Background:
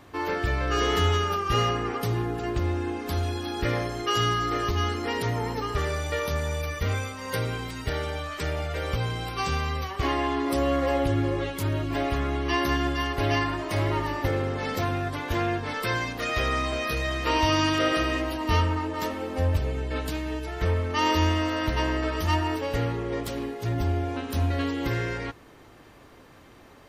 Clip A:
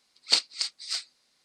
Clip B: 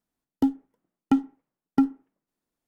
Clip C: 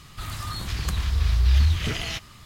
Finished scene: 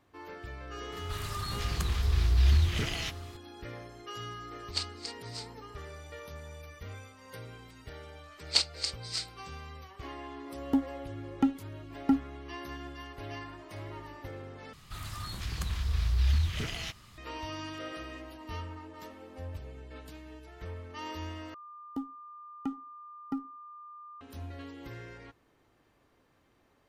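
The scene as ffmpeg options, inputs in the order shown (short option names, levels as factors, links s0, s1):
-filter_complex "[3:a]asplit=2[s0][s1];[1:a]asplit=2[s2][s3];[2:a]asplit=2[s4][s5];[0:a]volume=0.141[s6];[s5]aeval=exprs='val(0)+0.0282*sin(2*PI*1200*n/s)':c=same[s7];[s6]asplit=3[s8][s9][s10];[s8]atrim=end=14.734[s11];[s1]atrim=end=2.45,asetpts=PTS-STARTPTS,volume=0.422[s12];[s9]atrim=start=17.176:end=21.544[s13];[s7]atrim=end=2.67,asetpts=PTS-STARTPTS,volume=0.188[s14];[s10]atrim=start=24.206[s15];[s0]atrim=end=2.45,asetpts=PTS-STARTPTS,volume=0.596,afade=t=in:d=0.004:c=hsin,afade=t=out:st=2.446:d=0.004:c=hsin,adelay=920[s16];[s2]atrim=end=1.44,asetpts=PTS-STARTPTS,volume=0.266,afade=t=in:d=0.004:c=hsin,afade=t=out:st=1.436:d=0.004:c=hsin,adelay=4440[s17];[s3]atrim=end=1.44,asetpts=PTS-STARTPTS,volume=0.668,afade=t=in:d=0.004:c=hsin,afade=t=out:st=1.436:d=0.004:c=hsin,adelay=8230[s18];[s4]atrim=end=2.67,asetpts=PTS-STARTPTS,volume=0.562,afade=t=in:d=0.004:c=hsin,afade=t=out:st=2.666:d=0.004:c=hsin,adelay=10310[s19];[s11][s12]acrossfade=d=0.004:c1=hsin:c2=hsin[s20];[s20][s13]acrossfade=d=0.004:c1=hsin:c2=hsin[s21];[s21][s14]acrossfade=d=0.004:c1=hsin:c2=hsin[s22];[s22][s15]acrossfade=d=0.004:c1=hsin:c2=hsin[s23];[s23][s16][s17][s18][s19]amix=inputs=5:normalize=0"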